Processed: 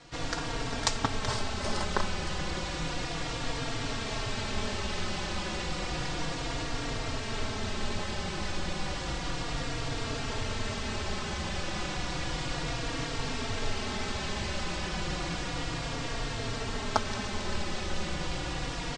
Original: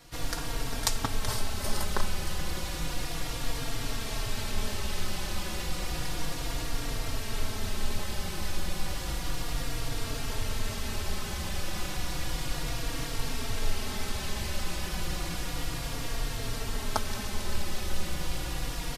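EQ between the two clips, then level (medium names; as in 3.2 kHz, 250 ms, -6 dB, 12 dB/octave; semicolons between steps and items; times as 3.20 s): steep low-pass 8.3 kHz 48 dB/octave; bass shelf 62 Hz -11 dB; treble shelf 6.3 kHz -9 dB; +3.5 dB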